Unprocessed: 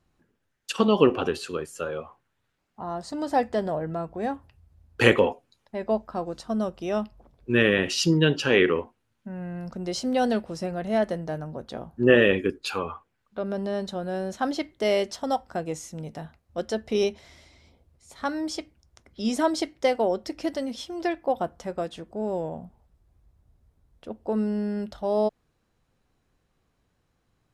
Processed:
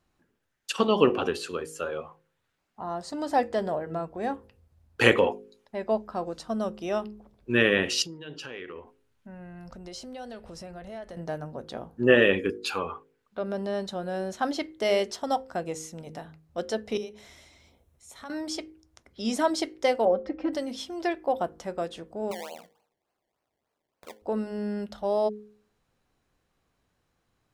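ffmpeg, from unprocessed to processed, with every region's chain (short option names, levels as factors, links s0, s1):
-filter_complex "[0:a]asettb=1/sr,asplit=3[s0][s1][s2];[s0]atrim=end=8.024[s3];[s1]atrim=start=8.02:end=11.17,asetpts=PTS-STARTPTS,afade=t=in:d=0.004:c=qsin,afade=t=out:st=3.146:d=0.004:c=qsin,asubboost=boost=7.5:cutoff=90,acompressor=threshold=0.0126:ratio=4:attack=3.2:release=140:knee=1:detection=peak[s4];[s2]atrim=start=11.166[s5];[s3][s4]acrossfade=d=0.004:c1=hsin:c2=qsin[s6];[s6][s5]acrossfade=d=0.004:c1=qsin:c2=hsin,asettb=1/sr,asplit=3[s7][s8][s9];[s7]atrim=end=16.974[s10];[s8]atrim=start=16.97:end=18.3,asetpts=PTS-STARTPTS,afade=t=in:d=0.004:c=qsin,afade=t=out:st=1.326:d=0.004:c=qsin,highshelf=f=7300:g=7.5,bandreject=f=4700:w=6.1,acompressor=threshold=0.00631:ratio=2.5:attack=3.2:release=140:knee=1:detection=peak[s11];[s9]atrim=start=18.296[s12];[s10][s11]acrossfade=d=0.004:c1=hsin:c2=qsin[s13];[s13][s12]acrossfade=d=0.004:c1=qsin:c2=hsin,asettb=1/sr,asplit=3[s14][s15][s16];[s14]atrim=end=20.054[s17];[s15]atrim=start=20.05:end=20.53,asetpts=PTS-STARTPTS,afade=t=in:d=0.004:c=qsin,afade=t=out:st=0.476:d=0.004:c=qsin,lowpass=1600,aecho=1:1:3.8:0.95,atrim=end_sample=21168[s18];[s16]atrim=start=20.526[s19];[s17][s18]acrossfade=d=0.004:c1=hsin:c2=qsin[s20];[s20][s19]acrossfade=d=0.004:c1=qsin:c2=hsin,asettb=1/sr,asplit=3[s21][s22][s23];[s21]atrim=end=22.314[s24];[s22]atrim=start=22.31:end=24.22,asetpts=PTS-STARTPTS,afade=t=in:d=0.004:c=qsin,afade=t=out:st=1.906:d=0.004:c=qsin,highpass=480,acompressor=threshold=0.0158:ratio=2:attack=3.2:release=140:knee=1:detection=peak,acrusher=samples=24:mix=1:aa=0.000001:lfo=1:lforange=24:lforate=3.4[s25];[s23]atrim=start=24.216[s26];[s24][s25]acrossfade=d=0.004:c1=hsin:c2=qsin[s27];[s27][s26]acrossfade=d=0.004:c1=qsin:c2=hsin,lowshelf=f=260:g=-4.5,bandreject=f=52.64:t=h:w=4,bandreject=f=105.28:t=h:w=4,bandreject=f=157.92:t=h:w=4,bandreject=f=210.56:t=h:w=4,bandreject=f=263.2:t=h:w=4,bandreject=f=315.84:t=h:w=4,bandreject=f=368.48:t=h:w=4,bandreject=f=421.12:t=h:w=4,bandreject=f=473.76:t=h:w=4,bandreject=f=526.4:t=h:w=4"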